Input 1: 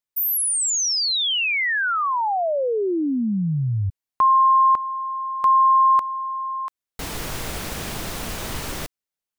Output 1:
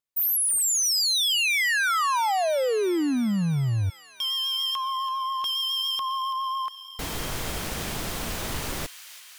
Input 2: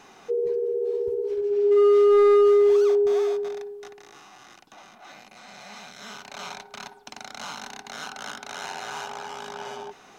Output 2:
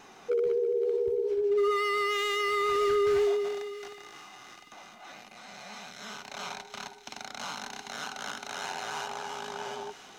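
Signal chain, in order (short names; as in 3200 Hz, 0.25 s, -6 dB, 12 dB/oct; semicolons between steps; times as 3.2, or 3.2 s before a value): vibrato 7.2 Hz 29 cents; wavefolder -19.5 dBFS; thin delay 0.333 s, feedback 73%, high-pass 2100 Hz, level -11.5 dB; gain -1.5 dB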